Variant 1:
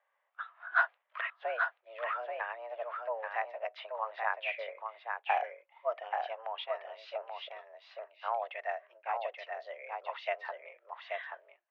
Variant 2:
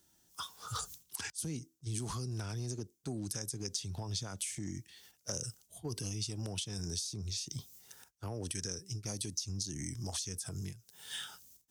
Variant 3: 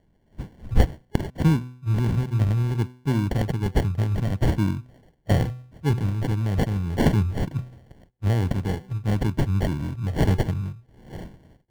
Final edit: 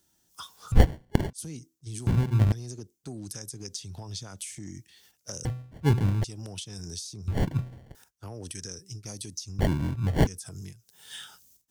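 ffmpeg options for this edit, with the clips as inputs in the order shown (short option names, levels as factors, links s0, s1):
-filter_complex "[2:a]asplit=5[s0][s1][s2][s3][s4];[1:a]asplit=6[s5][s6][s7][s8][s9][s10];[s5]atrim=end=0.722[s11];[s0]atrim=start=0.718:end=1.332[s12];[s6]atrim=start=1.328:end=2.072[s13];[s1]atrim=start=2.068:end=2.522[s14];[s7]atrim=start=2.518:end=5.452[s15];[s2]atrim=start=5.448:end=6.242[s16];[s8]atrim=start=6.238:end=7.282[s17];[s3]atrim=start=7.278:end=7.952[s18];[s9]atrim=start=7.948:end=9.592[s19];[s4]atrim=start=9.588:end=10.272[s20];[s10]atrim=start=10.268[s21];[s11][s12]acrossfade=d=0.004:c1=hsin:c2=hsin[s22];[s22][s13]acrossfade=d=0.004:c1=hsin:c2=hsin[s23];[s23][s14]acrossfade=d=0.004:c1=hsin:c2=hsin[s24];[s24][s15]acrossfade=d=0.004:c1=hsin:c2=hsin[s25];[s25][s16]acrossfade=d=0.004:c1=hsin:c2=hsin[s26];[s26][s17]acrossfade=d=0.004:c1=hsin:c2=hsin[s27];[s27][s18]acrossfade=d=0.004:c1=hsin:c2=hsin[s28];[s28][s19]acrossfade=d=0.004:c1=hsin:c2=hsin[s29];[s29][s20]acrossfade=d=0.004:c1=hsin:c2=hsin[s30];[s30][s21]acrossfade=d=0.004:c1=hsin:c2=hsin"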